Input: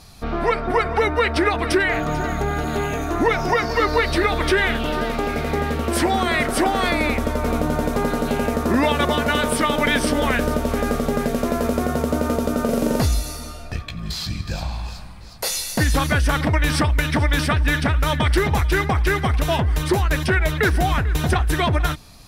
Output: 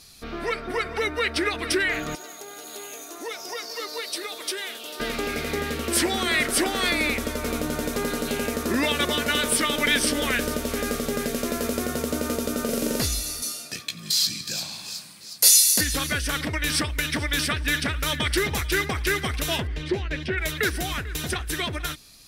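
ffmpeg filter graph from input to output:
ffmpeg -i in.wav -filter_complex "[0:a]asettb=1/sr,asplit=3[link_01][link_02][link_03];[link_01]atrim=end=2.154[link_04];[link_02]atrim=start=2.15:end=5,asetpts=PTS-STARTPTS,afade=type=in:duration=0.004:curve=qsin,afade=type=out:start_time=2.846:duration=0.004:curve=qsin,highpass=680,equalizer=frequency=1800:width=0.72:gain=-14.5[link_05];[link_03]atrim=start=4.996[link_06];[link_04][link_05]acrossfade=duration=0.004:curve1=hsin:curve2=qsin[link_07];[link_07][link_06]acrossfade=duration=0.004:curve1=qsin:curve2=hsin,asettb=1/sr,asplit=3[link_08][link_09][link_10];[link_08]atrim=end=13.424[link_11];[link_09]atrim=start=13.42:end=15.81,asetpts=PTS-STARTPTS,afade=type=in:duration=0.004:curve=qsin,afade=type=out:start_time=2.386:duration=0.004:curve=qsin,highpass=frequency=140:width=0.5412,highpass=frequency=140:width=1.3066,bass=frequency=250:gain=2,treble=frequency=4000:gain=10[link_12];[link_10]atrim=start=15.806[link_13];[link_11][link_12]acrossfade=duration=0.004:curve1=hsin:curve2=qsin[link_14];[link_14][link_13]acrossfade=duration=0.004:curve1=qsin:curve2=hsin,asettb=1/sr,asplit=3[link_15][link_16][link_17];[link_15]atrim=end=19.674[link_18];[link_16]atrim=start=19.67:end=20.38,asetpts=PTS-STARTPTS,afade=type=in:duration=0.004:curve=qsin,afade=type=out:start_time=0.706:duration=0.004:curve=qsin,lowpass=2600,equalizer=frequency=1200:width_type=o:width=0.92:gain=-9[link_19];[link_17]atrim=start=20.376[link_20];[link_18][link_19]acrossfade=duration=0.004:curve1=hsin:curve2=qsin[link_21];[link_21][link_20]acrossfade=duration=0.004:curve1=qsin:curve2=hsin,bass=frequency=250:gain=-13,treble=frequency=4000:gain=2,dynaudnorm=framelen=130:gausssize=31:maxgain=3.5dB,equalizer=frequency=820:width=0.86:gain=-13.5" out.wav

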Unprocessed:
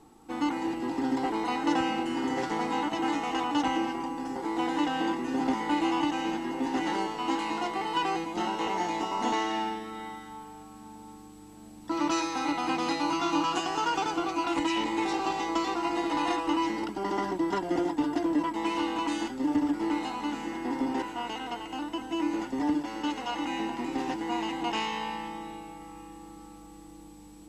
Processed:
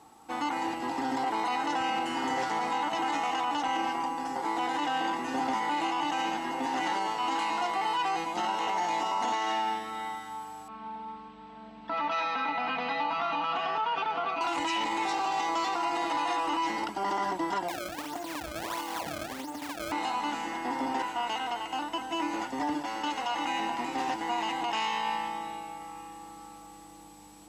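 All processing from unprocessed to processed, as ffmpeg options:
ffmpeg -i in.wav -filter_complex "[0:a]asettb=1/sr,asplit=3[link_01][link_02][link_03];[link_01]atrim=end=10.684[link_04];[link_02]atrim=start=10.68:end=14.41,asetpts=PTS-STARTPTS,afade=type=in:duration=0.004:curve=qsin,afade=type=out:start_time=3.726:duration=0.004:curve=qsin,lowpass=frequency=3500:width=0.5412,lowpass=frequency=3500:width=1.3066,aecho=1:1:4.5:0.95,atrim=end_sample=164493,acompressor=threshold=-31dB:ratio=3:attack=3.2:release=140:knee=1:detection=peak[link_05];[link_03]atrim=start=14.406[link_06];[link_04][link_05]acrossfade=duration=0.004:curve1=hsin:curve2=qsin[link_07];[link_07][link_06]acrossfade=duration=0.004:curve1=qsin:curve2=hsin,asettb=1/sr,asplit=3[link_08][link_09][link_10];[link_08]atrim=end=17.684[link_11];[link_09]atrim=start=17.68:end=19.92,asetpts=PTS-STARTPTS,afade=type=in:duration=0.004:curve=qsin,afade=type=out:start_time=2.236:duration=0.004:curve=qsin,acompressor=threshold=-32dB:ratio=10:attack=3.2:release=140:knee=1:detection=peak,acrusher=samples=27:mix=1:aa=0.000001:lfo=1:lforange=43.2:lforate=1.5[link_12];[link_10]atrim=start=19.916[link_13];[link_11][link_12]acrossfade=duration=0.004:curve1=hsin:curve2=qsin[link_14];[link_14][link_13]acrossfade=duration=0.004:curve1=qsin:curve2=hsin,highpass=58,lowshelf=frequency=510:width_type=q:width=1.5:gain=-7,alimiter=level_in=1dB:limit=-24dB:level=0:latency=1:release=29,volume=-1dB,volume=3.5dB" out.wav

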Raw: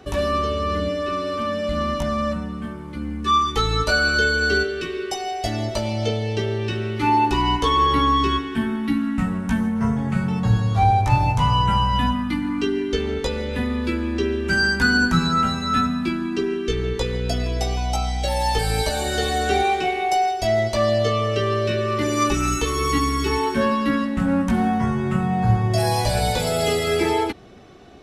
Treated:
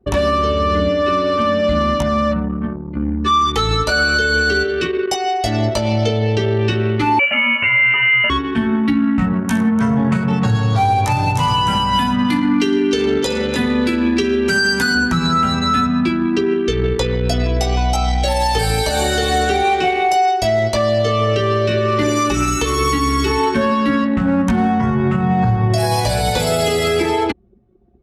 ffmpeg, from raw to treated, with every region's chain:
ffmpeg -i in.wav -filter_complex "[0:a]asettb=1/sr,asplit=3[link_01][link_02][link_03];[link_01]atrim=end=7.194[link_04];[link_02]atrim=start=7.19:end=8.3,asetpts=PTS-STARTPTS,afade=type=in:duration=0.004:curve=qsin,afade=type=out:start_time=1.106:duration=0.004:curve=qsin,highpass=220,aemphasis=mode=production:type=riaa,lowpass=frequency=2700:width_type=q:width=0.5098,lowpass=frequency=2700:width_type=q:width=0.6013,lowpass=frequency=2700:width_type=q:width=0.9,lowpass=frequency=2700:width_type=q:width=2.563,afreqshift=-3200[link_05];[link_03]atrim=start=8.296[link_06];[link_04][link_05]acrossfade=duration=0.004:curve1=hsin:curve2=qsin[link_07];[link_07][link_06]acrossfade=duration=0.004:curve1=qsin:curve2=hsin,asettb=1/sr,asplit=3[link_08][link_09][link_10];[link_08]atrim=end=9.334[link_11];[link_09]atrim=start=9.33:end=14.95,asetpts=PTS-STARTPTS,afade=type=in:duration=0.004:curve=qsin,afade=type=out:start_time=5.616:duration=0.004:curve=qsin,highpass=120,highshelf=frequency=5800:gain=10.5,aecho=1:1:62|110|296:0.251|0.178|0.299,atrim=end_sample=247842[link_12];[link_10]atrim=start=14.946[link_13];[link_11][link_12]acrossfade=duration=0.004:curve1=hsin:curve2=qsin[link_14];[link_14][link_13]acrossfade=duration=0.004:curve1=qsin:curve2=hsin,anlmdn=25.1,highpass=50,alimiter=limit=-16.5dB:level=0:latency=1:release=162,volume=9dB" out.wav

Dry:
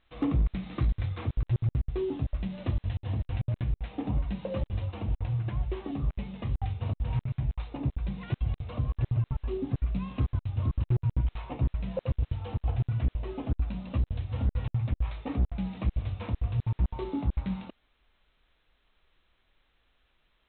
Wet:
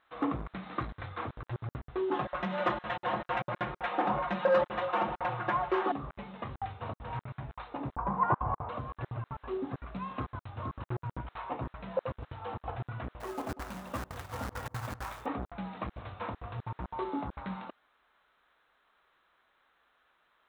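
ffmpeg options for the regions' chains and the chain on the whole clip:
ffmpeg -i in.wav -filter_complex "[0:a]asettb=1/sr,asplit=3[link_01][link_02][link_03];[link_01]atrim=end=2.114[link_04];[link_02]atrim=start=2.11:end=5.92,asetpts=PTS-STARTPTS,afade=type=in:duration=0.004:curve=qsin,afade=type=out:start_time=3.806:duration=0.004:curve=qsin,aecho=1:1:5.6:0.88,atrim=end_sample=168021,asplit=2[link_05][link_06];[link_06]highpass=frequency=720:poles=1,volume=18dB,asoftclip=type=tanh:threshold=-18dB[link_07];[link_05][link_07]amix=inputs=2:normalize=0,lowpass=frequency=2200:poles=1,volume=-6dB[link_08];[link_03]atrim=start=5.916[link_09];[link_04][link_08]acrossfade=duration=0.004:curve1=hsin:curve2=qsin[link_10];[link_10][link_09]acrossfade=duration=0.004:curve1=qsin:curve2=hsin,asettb=1/sr,asplit=3[link_11][link_12][link_13];[link_11]atrim=end=7.964[link_14];[link_12]atrim=start=7.96:end=8.69,asetpts=PTS-STARTPTS,afade=type=in:duration=0.004:curve=qsin,afade=type=out:start_time=0.726:duration=0.004:curve=qsin,acontrast=67,lowpass=frequency=1000:width_type=q:width=4.8[link_15];[link_13]atrim=start=8.686[link_16];[link_14][link_15]acrossfade=duration=0.004:curve1=hsin:curve2=qsin[link_17];[link_17][link_16]acrossfade=duration=0.004:curve1=qsin:curve2=hsin,asettb=1/sr,asplit=3[link_18][link_19][link_20];[link_18]atrim=end=13.204[link_21];[link_19]atrim=start=13.2:end=15.26,asetpts=PTS-STARTPTS,afade=type=in:duration=0.004:curve=qsin,afade=type=out:start_time=2.056:duration=0.004:curve=qsin,acrusher=bits=4:mode=log:mix=0:aa=0.000001,asplit=2[link_22][link_23];[link_23]adelay=189,lowpass=frequency=1200:poles=1,volume=-14.5dB,asplit=2[link_24][link_25];[link_25]adelay=189,lowpass=frequency=1200:poles=1,volume=0.54,asplit=2[link_26][link_27];[link_27]adelay=189,lowpass=frequency=1200:poles=1,volume=0.54,asplit=2[link_28][link_29];[link_29]adelay=189,lowpass=frequency=1200:poles=1,volume=0.54,asplit=2[link_30][link_31];[link_31]adelay=189,lowpass=frequency=1200:poles=1,volume=0.54[link_32];[link_22][link_24][link_26][link_28][link_30][link_32]amix=inputs=6:normalize=0,atrim=end_sample=90846[link_33];[link_20]atrim=start=15.256[link_34];[link_21][link_33]acrossfade=duration=0.004:curve1=hsin:curve2=qsin[link_35];[link_35][link_34]acrossfade=duration=0.004:curve1=qsin:curve2=hsin,highpass=frequency=1300:poles=1,highshelf=frequency=1900:width_type=q:width=1.5:gain=-9.5,volume=9.5dB" out.wav

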